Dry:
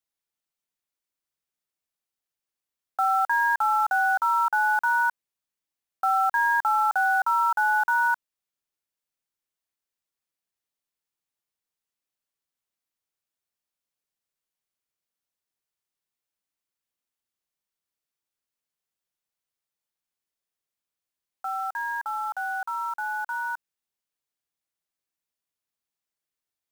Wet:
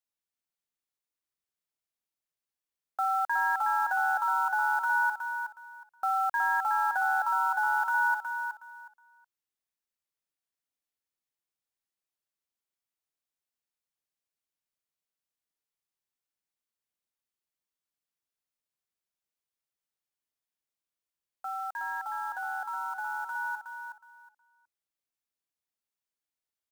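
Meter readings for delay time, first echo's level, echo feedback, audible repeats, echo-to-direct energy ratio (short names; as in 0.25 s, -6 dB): 0.367 s, -6.5 dB, 21%, 3, -6.5 dB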